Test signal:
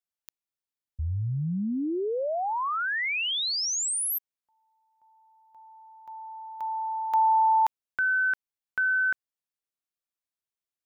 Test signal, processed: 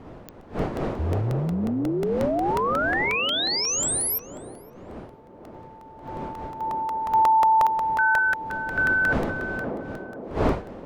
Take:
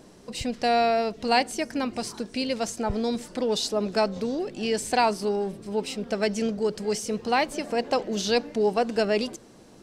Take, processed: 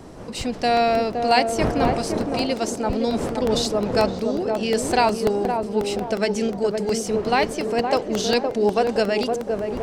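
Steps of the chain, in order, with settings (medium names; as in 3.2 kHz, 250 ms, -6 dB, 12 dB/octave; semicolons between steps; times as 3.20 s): wind noise 520 Hz -37 dBFS; band-passed feedback delay 516 ms, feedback 53%, band-pass 410 Hz, level -3 dB; crackling interface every 0.18 s, samples 64, repeat, from 0.41 s; trim +3 dB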